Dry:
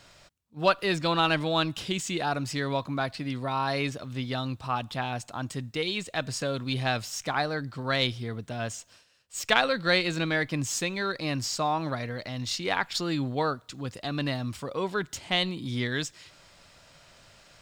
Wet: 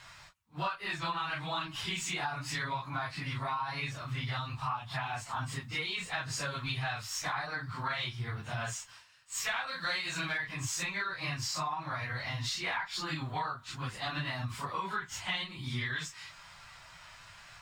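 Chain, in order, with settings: phase randomisation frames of 100 ms; graphic EQ 125/250/500/1000/2000 Hz +3/-9/-11/+9/+5 dB; compression 10:1, threshold -32 dBFS, peak gain reduction 19 dB; 9.67–10.38 s: tone controls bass -2 dB, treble +8 dB

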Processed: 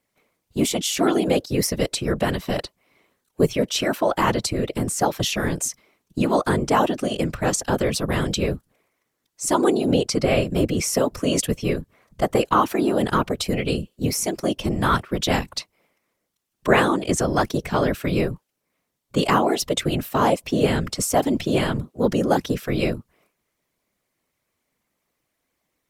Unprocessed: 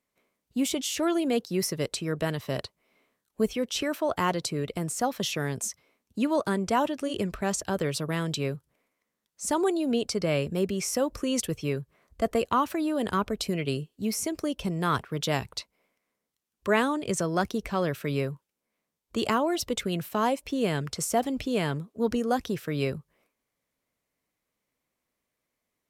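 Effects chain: whisper effect; trim +6.5 dB

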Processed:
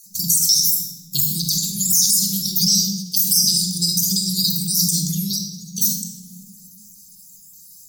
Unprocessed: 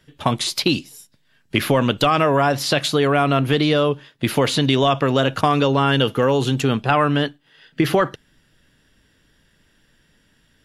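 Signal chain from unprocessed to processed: random holes in the spectrogram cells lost 29%; RIAA curve recording; de-esser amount 35%; Chebyshev band-stop 130–4200 Hz, order 4; bass shelf 120 Hz -8 dB; simulated room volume 2300 m³, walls mixed, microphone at 2.1 m; speed mistake 33 rpm record played at 45 rpm; loudness maximiser +19 dB; endings held to a fixed fall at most 100 dB/s; trim -4.5 dB

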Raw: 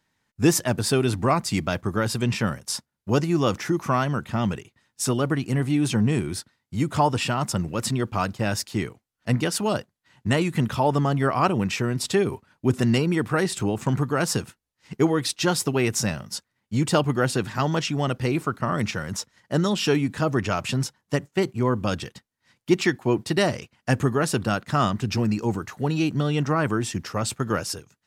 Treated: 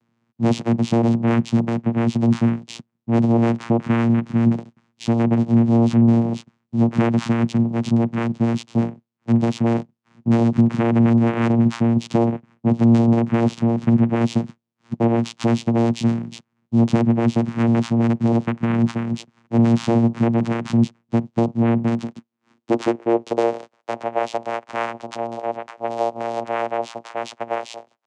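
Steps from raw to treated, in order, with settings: sine folder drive 9 dB, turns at -6 dBFS; vocoder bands 4, saw 116 Hz; high-pass sweep 180 Hz -> 630 Hz, 21.85–23.96 s; trim -5 dB

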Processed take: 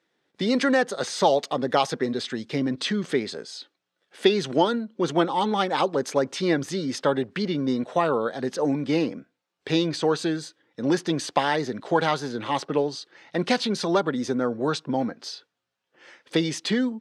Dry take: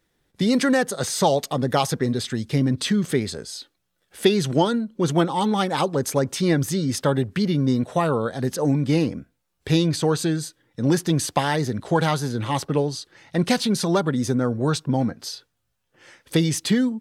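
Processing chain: band-pass 270–5000 Hz

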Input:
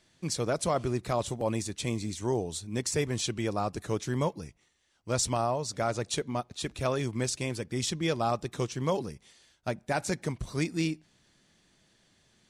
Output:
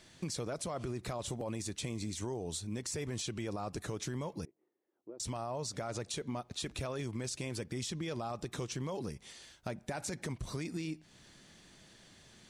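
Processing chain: peak limiter -27.5 dBFS, peak gain reduction 10 dB; compression 2.5:1, threshold -47 dBFS, peak gain reduction 10.5 dB; 4.45–5.20 s: ladder band-pass 390 Hz, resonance 60%; trim +7 dB

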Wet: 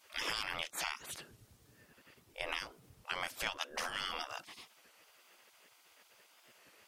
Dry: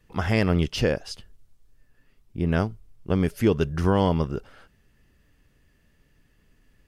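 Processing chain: spectral gate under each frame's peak -25 dB weak; compression 3:1, threshold -47 dBFS, peak gain reduction 10.5 dB; warped record 33 1/3 rpm, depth 100 cents; trim +10 dB

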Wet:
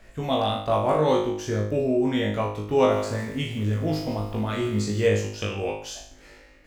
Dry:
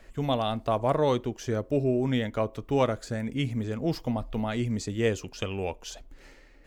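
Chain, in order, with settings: flutter echo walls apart 3.3 m, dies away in 0.55 s; 2.76–5.07 s: bit-crushed delay 154 ms, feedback 35%, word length 7-bit, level -14.5 dB

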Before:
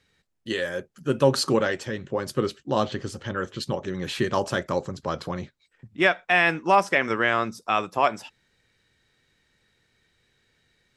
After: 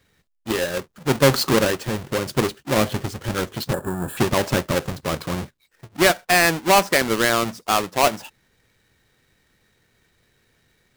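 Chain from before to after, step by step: square wave that keeps the level; time-frequency box 3.73–4.17 s, 1.8–6.9 kHz -19 dB

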